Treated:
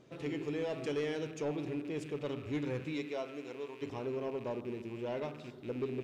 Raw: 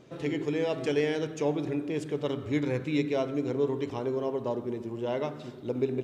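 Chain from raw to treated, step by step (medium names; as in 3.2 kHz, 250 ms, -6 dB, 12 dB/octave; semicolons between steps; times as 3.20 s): rattle on loud lows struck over -42 dBFS, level -38 dBFS; 2.92–3.81 s: high-pass 360 Hz -> 1.4 kHz 6 dB/octave; saturation -21.5 dBFS, distortion -18 dB; trim -6 dB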